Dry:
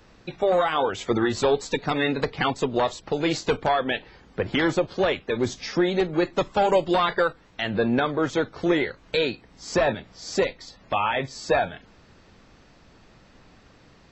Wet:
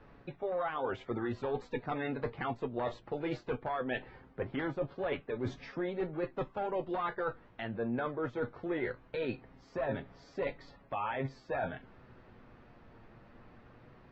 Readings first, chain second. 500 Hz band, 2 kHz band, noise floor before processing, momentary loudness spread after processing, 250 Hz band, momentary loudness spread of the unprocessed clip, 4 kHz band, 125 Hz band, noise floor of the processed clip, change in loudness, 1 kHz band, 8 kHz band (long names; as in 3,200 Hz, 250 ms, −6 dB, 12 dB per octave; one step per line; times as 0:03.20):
−12.5 dB, −13.5 dB, −55 dBFS, 6 LU, −12.0 dB, 7 LU, −21.0 dB, −9.5 dB, −60 dBFS, −12.5 dB, −12.5 dB, can't be measured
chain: flanger 0.19 Hz, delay 7 ms, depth 1.7 ms, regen +54%
low-pass filter 1,900 Hz 12 dB per octave
reversed playback
downward compressor 6 to 1, threshold −34 dBFS, peak gain reduction 14 dB
reversed playback
level +1.5 dB